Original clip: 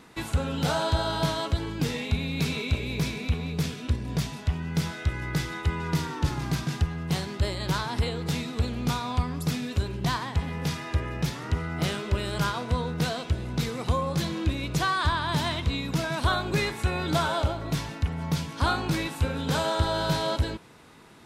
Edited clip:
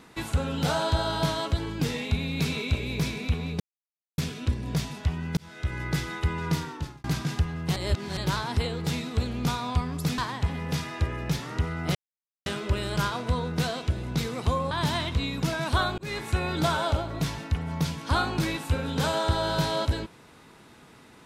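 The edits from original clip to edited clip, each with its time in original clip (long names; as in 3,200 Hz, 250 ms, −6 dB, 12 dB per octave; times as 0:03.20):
0:03.60: splice in silence 0.58 s
0:04.79–0:05.19: fade in
0:05.94–0:06.46: fade out
0:07.18–0:07.59: reverse
0:09.60–0:10.11: remove
0:11.88: splice in silence 0.51 s
0:14.13–0:15.22: remove
0:16.49–0:16.76: fade in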